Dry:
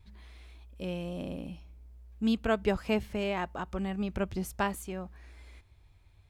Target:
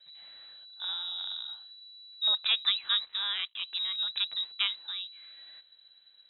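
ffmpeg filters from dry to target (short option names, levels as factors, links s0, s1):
-filter_complex "[0:a]asettb=1/sr,asplit=3[s0][s1][s2];[s0]atrim=end=3.044[s3];[s1]atrim=start=3.04:end=3.58,asetpts=PTS-STARTPTS,afade=t=in:d=0.004:c=qsin,afade=t=out:st=0.536:d=0.004:c=qsin,aeval=exprs='sgn(val(0))*max(abs(val(0))-0.00398,0)':c=same[s4];[s2]atrim=start=3.576[s5];[s3][s4]acrossfade=d=0.004:c1=hsin:c2=qsin[s6];[s6][s5]acrossfade=d=0.004:c1=qsin:c2=hsin,lowpass=f=3400:t=q:w=0.5098,lowpass=f=3400:t=q:w=0.6013,lowpass=f=3400:t=q:w=0.9,lowpass=f=3400:t=q:w=2.563,afreqshift=-4000"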